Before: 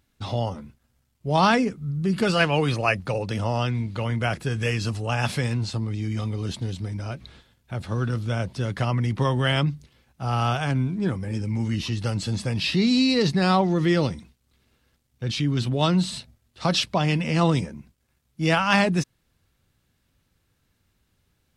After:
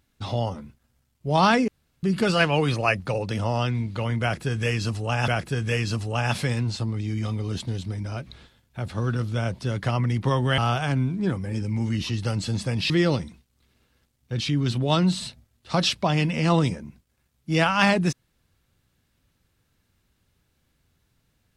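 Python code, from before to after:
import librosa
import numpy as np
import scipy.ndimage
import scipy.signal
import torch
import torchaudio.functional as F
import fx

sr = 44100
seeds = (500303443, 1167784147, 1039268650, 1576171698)

y = fx.edit(x, sr, fx.room_tone_fill(start_s=1.68, length_s=0.35),
    fx.repeat(start_s=4.22, length_s=1.06, count=2),
    fx.cut(start_s=9.52, length_s=0.85),
    fx.cut(start_s=12.69, length_s=1.12), tone=tone)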